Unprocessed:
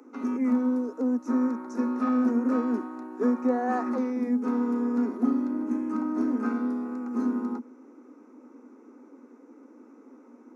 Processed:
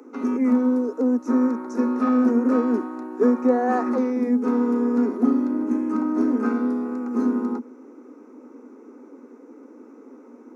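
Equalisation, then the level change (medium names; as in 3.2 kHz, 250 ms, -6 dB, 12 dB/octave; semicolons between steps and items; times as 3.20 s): peaking EQ 430 Hz +5 dB 0.56 oct; +4.5 dB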